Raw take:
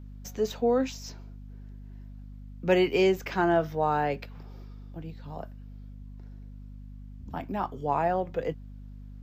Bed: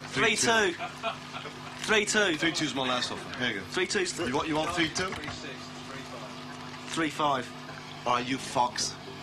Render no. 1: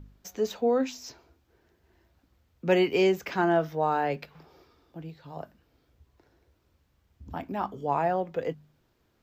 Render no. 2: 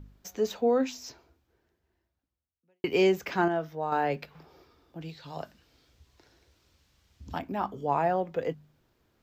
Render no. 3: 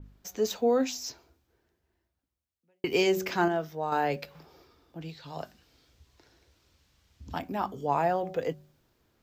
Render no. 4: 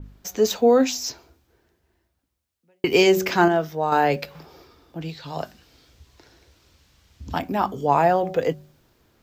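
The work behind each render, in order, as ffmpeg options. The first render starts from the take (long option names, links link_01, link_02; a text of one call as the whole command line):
ffmpeg -i in.wav -af "bandreject=frequency=50:width_type=h:width=4,bandreject=frequency=100:width_type=h:width=4,bandreject=frequency=150:width_type=h:width=4,bandreject=frequency=200:width_type=h:width=4,bandreject=frequency=250:width_type=h:width=4" out.wav
ffmpeg -i in.wav -filter_complex "[0:a]asettb=1/sr,asplit=3[link_01][link_02][link_03];[link_01]atrim=end=5.014[link_04];[link_02]atrim=start=5.01:end=7.39,asetpts=PTS-STARTPTS,afade=type=in:duration=0.004:curve=qsin,afade=type=out:start_time=2.376:duration=0.004:curve=qsin,equalizer=frequency=5000:width=0.45:gain=12[link_05];[link_03]atrim=start=7.386[link_06];[link_04][link_05]acrossfade=duration=0.004:curve1=hsin:curve2=qsin[link_07];[link_07][link_06]acrossfade=duration=0.004:curve1=qsin:curve2=hsin,asplit=4[link_08][link_09][link_10][link_11];[link_08]atrim=end=2.84,asetpts=PTS-STARTPTS,afade=type=out:start_time=1.03:duration=1.81:curve=qua[link_12];[link_09]atrim=start=2.84:end=3.482,asetpts=PTS-STARTPTS,afade=type=in:duration=0.004:curve=hsin[link_13];[link_10]atrim=start=3.478:end=3.922,asetpts=PTS-STARTPTS,volume=-6dB[link_14];[link_11]atrim=start=3.918[link_15];[link_12][link_13]concat=n=2:v=0:a=1[link_16];[link_16][link_14]acrossfade=duration=0.004:curve1=hsin:curve2=hsin[link_17];[link_17][link_15]acrossfade=duration=0.004:curve1=hsin:curve2=hsin" out.wav
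ffmpeg -i in.wav -af "bandreject=frequency=187.7:width_type=h:width=4,bandreject=frequency=375.4:width_type=h:width=4,bandreject=frequency=563.1:width_type=h:width=4,bandreject=frequency=750.8:width_type=h:width=4,adynamicequalizer=threshold=0.00355:dfrequency=3800:dqfactor=0.7:tfrequency=3800:tqfactor=0.7:attack=5:release=100:ratio=0.375:range=4:mode=boostabove:tftype=highshelf" out.wav
ffmpeg -i in.wav -af "volume=8.5dB" out.wav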